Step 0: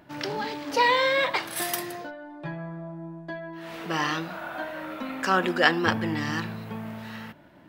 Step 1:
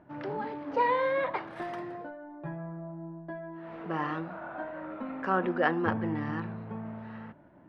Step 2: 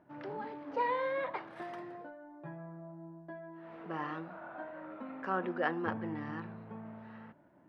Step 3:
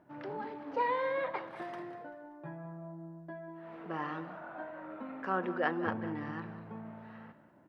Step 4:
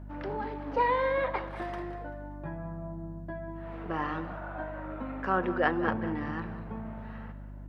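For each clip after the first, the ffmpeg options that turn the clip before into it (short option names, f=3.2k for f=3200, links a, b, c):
-af "lowpass=1.3k,volume=-3dB"
-af "lowshelf=f=80:g=-11,volume=-6dB"
-af "aecho=1:1:193|386|579:0.2|0.0658|0.0217,volume=1dB"
-af "aeval=exprs='val(0)+0.00447*(sin(2*PI*50*n/s)+sin(2*PI*2*50*n/s)/2+sin(2*PI*3*50*n/s)/3+sin(2*PI*4*50*n/s)/4+sin(2*PI*5*50*n/s)/5)':c=same,volume=5dB"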